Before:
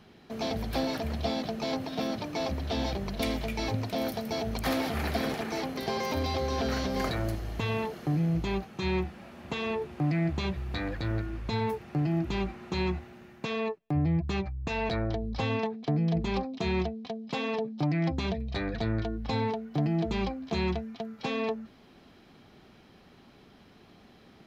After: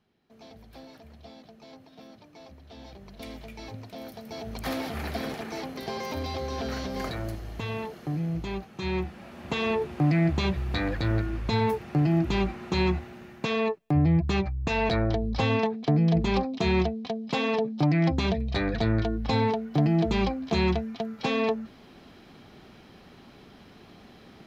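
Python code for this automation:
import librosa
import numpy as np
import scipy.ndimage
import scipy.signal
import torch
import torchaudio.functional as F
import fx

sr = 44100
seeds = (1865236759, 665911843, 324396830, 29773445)

y = fx.gain(x, sr, db=fx.line((2.64, -17.5), (3.35, -10.0), (4.07, -10.0), (4.67, -2.5), (8.63, -2.5), (9.62, 5.0)))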